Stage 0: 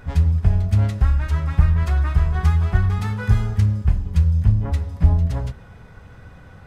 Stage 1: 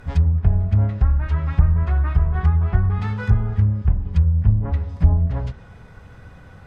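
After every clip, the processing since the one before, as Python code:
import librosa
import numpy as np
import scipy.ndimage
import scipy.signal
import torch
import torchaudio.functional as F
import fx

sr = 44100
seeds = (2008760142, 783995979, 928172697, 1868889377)

y = fx.env_lowpass_down(x, sr, base_hz=1200.0, full_db=-13.0)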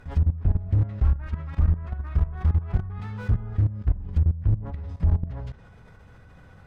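y = fx.level_steps(x, sr, step_db=16)
y = fx.slew_limit(y, sr, full_power_hz=17.0)
y = y * 10.0 ** (-1.0 / 20.0)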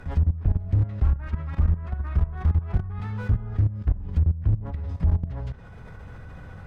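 y = fx.band_squash(x, sr, depth_pct=40)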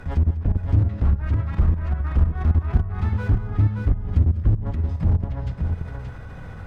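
y = np.clip(x, -10.0 ** (-17.0 / 20.0), 10.0 ** (-17.0 / 20.0))
y = fx.echo_multitap(y, sr, ms=(198, 576), db=(-15.5, -5.0))
y = y * 10.0 ** (3.5 / 20.0)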